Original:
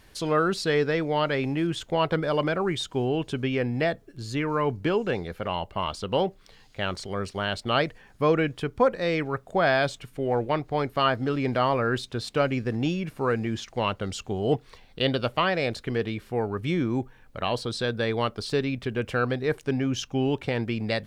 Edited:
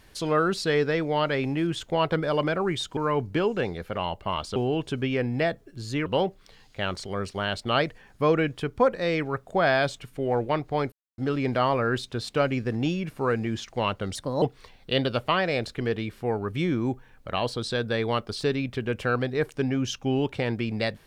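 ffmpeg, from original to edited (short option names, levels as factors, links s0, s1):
-filter_complex "[0:a]asplit=8[s0][s1][s2][s3][s4][s5][s6][s7];[s0]atrim=end=2.972[s8];[s1]atrim=start=4.468:end=6.062[s9];[s2]atrim=start=2.968:end=4.472[s10];[s3]atrim=start=6.058:end=10.92,asetpts=PTS-STARTPTS,afade=t=out:st=4.858:d=0.004:c=hsin[s11];[s4]atrim=start=10.92:end=11.18,asetpts=PTS-STARTPTS,volume=0[s12];[s5]atrim=start=11.18:end=14.154,asetpts=PTS-STARTPTS,afade=t=in:d=0.004:c=hsin[s13];[s6]atrim=start=14.15:end=14.51,asetpts=PTS-STARTPTS,asetrate=58653,aresample=44100[s14];[s7]atrim=start=14.506[s15];[s8][s9]acrossfade=d=0.004:c1=hsin:c2=hsin[s16];[s16][s10]acrossfade=d=0.004:c1=hsin:c2=hsin[s17];[s11][s12][s13]concat=n=3:v=0:a=1[s18];[s17][s18]acrossfade=d=0.004:c1=hsin:c2=hsin[s19];[s19][s14]acrossfade=d=0.004:c1=hsin:c2=hsin[s20];[s20][s15]acrossfade=d=0.004:c1=hsin:c2=hsin"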